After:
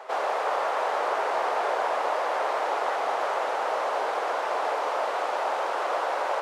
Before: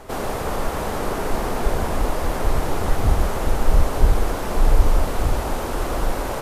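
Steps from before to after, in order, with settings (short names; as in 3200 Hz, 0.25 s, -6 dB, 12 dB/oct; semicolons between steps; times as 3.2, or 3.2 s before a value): HPF 570 Hz 24 dB/oct; tape spacing loss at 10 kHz 22 dB; gain +5 dB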